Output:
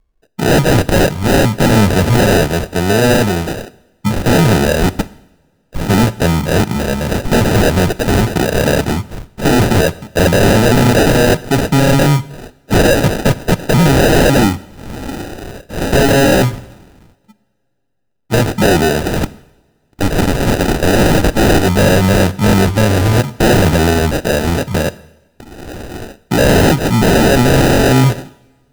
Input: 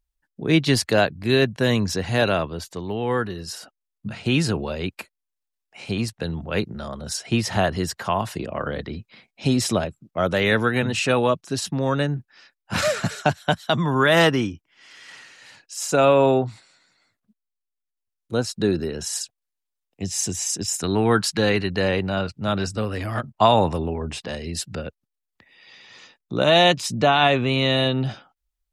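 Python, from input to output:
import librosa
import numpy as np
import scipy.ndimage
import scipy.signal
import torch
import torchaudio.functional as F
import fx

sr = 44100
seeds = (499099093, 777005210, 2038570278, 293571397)

y = fx.cycle_switch(x, sr, every=2, mode='inverted', at=(19.16, 21.64))
y = scipy.signal.sosfilt(scipy.signal.butter(2, 5900.0, 'lowpass', fs=sr, output='sos'), y)
y = fx.peak_eq(y, sr, hz=2200.0, db=12.5, octaves=0.26)
y = fx.sample_hold(y, sr, seeds[0], rate_hz=1100.0, jitter_pct=0)
y = fx.fold_sine(y, sr, drive_db=15, ceiling_db=-4.0)
y = fx.rev_double_slope(y, sr, seeds[1], early_s=0.84, late_s=2.8, knee_db=-25, drr_db=16.5)
y = y * 10.0 ** (-2.0 / 20.0)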